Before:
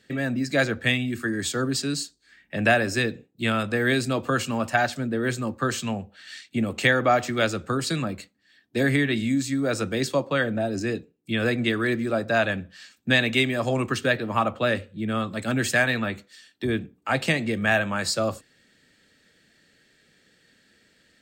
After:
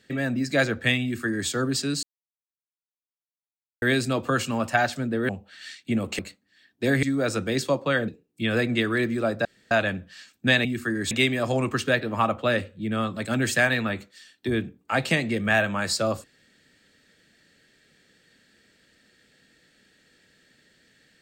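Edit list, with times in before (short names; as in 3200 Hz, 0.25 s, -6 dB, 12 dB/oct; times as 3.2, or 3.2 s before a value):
1.03–1.49 copy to 13.28
2.03–3.82 mute
5.29–5.95 cut
6.85–8.12 cut
8.96–9.48 cut
10.53–10.97 cut
12.34 insert room tone 0.26 s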